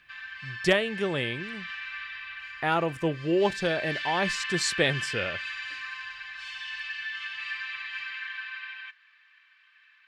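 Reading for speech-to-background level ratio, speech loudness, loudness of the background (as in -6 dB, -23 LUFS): 6.5 dB, -28.0 LUFS, -34.5 LUFS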